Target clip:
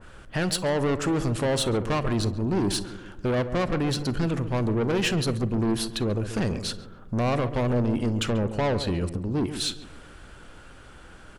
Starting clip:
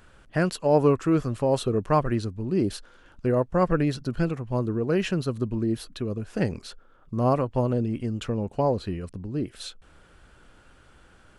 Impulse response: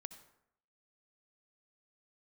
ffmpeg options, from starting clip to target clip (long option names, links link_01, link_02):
-filter_complex "[0:a]alimiter=limit=-17dB:level=0:latency=1:release=99,asoftclip=type=tanh:threshold=-28.5dB,asplit=2[link_01][link_02];[link_02]adelay=138,lowpass=frequency=1100:poles=1,volume=-10dB,asplit=2[link_03][link_04];[link_04]adelay=138,lowpass=frequency=1100:poles=1,volume=0.52,asplit=2[link_05][link_06];[link_06]adelay=138,lowpass=frequency=1100:poles=1,volume=0.52,asplit=2[link_07][link_08];[link_08]adelay=138,lowpass=frequency=1100:poles=1,volume=0.52,asplit=2[link_09][link_10];[link_10]adelay=138,lowpass=frequency=1100:poles=1,volume=0.52,asplit=2[link_11][link_12];[link_12]adelay=138,lowpass=frequency=1100:poles=1,volume=0.52[link_13];[link_01][link_03][link_05][link_07][link_09][link_11][link_13]amix=inputs=7:normalize=0,asplit=2[link_14][link_15];[1:a]atrim=start_sample=2205,afade=type=out:start_time=0.18:duration=0.01,atrim=end_sample=8379,asetrate=79380,aresample=44100[link_16];[link_15][link_16]afir=irnorm=-1:irlink=0,volume=8.5dB[link_17];[link_14][link_17]amix=inputs=2:normalize=0,adynamicequalizer=threshold=0.00501:dfrequency=2000:dqfactor=0.7:tfrequency=2000:tqfactor=0.7:attack=5:release=100:ratio=0.375:range=2:mode=boostabove:tftype=highshelf,volume=2dB"